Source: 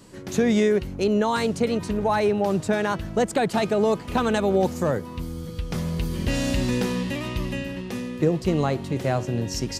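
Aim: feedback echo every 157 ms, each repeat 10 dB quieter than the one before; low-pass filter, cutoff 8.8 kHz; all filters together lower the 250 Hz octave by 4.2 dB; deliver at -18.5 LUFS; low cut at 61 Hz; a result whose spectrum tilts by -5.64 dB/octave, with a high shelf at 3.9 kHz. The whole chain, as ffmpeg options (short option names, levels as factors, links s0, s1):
-af "highpass=61,lowpass=8800,equalizer=f=250:t=o:g=-5.5,highshelf=f=3900:g=-8.5,aecho=1:1:157|314|471|628:0.316|0.101|0.0324|0.0104,volume=2.37"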